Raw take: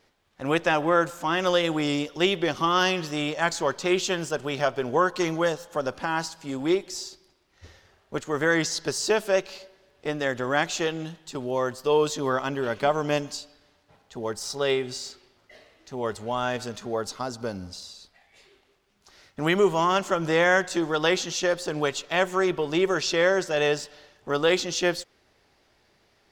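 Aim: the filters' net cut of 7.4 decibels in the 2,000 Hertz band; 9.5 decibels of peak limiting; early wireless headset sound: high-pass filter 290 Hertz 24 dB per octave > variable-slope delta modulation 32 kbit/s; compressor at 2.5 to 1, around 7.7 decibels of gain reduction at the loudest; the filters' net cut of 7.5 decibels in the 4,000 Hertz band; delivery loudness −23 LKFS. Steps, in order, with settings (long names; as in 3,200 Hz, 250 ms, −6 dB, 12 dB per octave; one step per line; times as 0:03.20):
parametric band 2,000 Hz −8.5 dB
parametric band 4,000 Hz −7 dB
downward compressor 2.5 to 1, threshold −29 dBFS
brickwall limiter −27 dBFS
high-pass filter 290 Hz 24 dB per octave
variable-slope delta modulation 32 kbit/s
level +15 dB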